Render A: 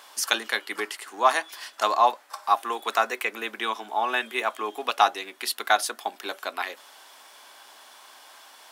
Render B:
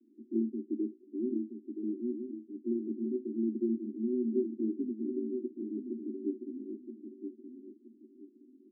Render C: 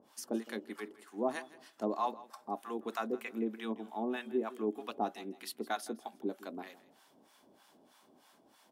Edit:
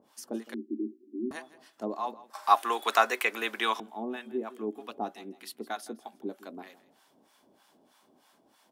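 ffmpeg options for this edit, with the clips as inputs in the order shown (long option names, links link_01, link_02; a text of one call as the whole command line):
ffmpeg -i take0.wav -i take1.wav -i take2.wav -filter_complex "[2:a]asplit=3[link_01][link_02][link_03];[link_01]atrim=end=0.542[link_04];[1:a]atrim=start=0.538:end=1.312[link_05];[link_02]atrim=start=1.308:end=2.352[link_06];[0:a]atrim=start=2.348:end=3.802[link_07];[link_03]atrim=start=3.798[link_08];[link_04][link_05]acrossfade=duration=0.004:curve1=hsin:curve2=hsin[link_09];[link_09][link_06]acrossfade=duration=0.004:curve1=hsin:curve2=hsin[link_10];[link_10][link_07]acrossfade=duration=0.004:curve1=hsin:curve2=hsin[link_11];[link_11][link_08]acrossfade=duration=0.004:curve1=hsin:curve2=hsin" out.wav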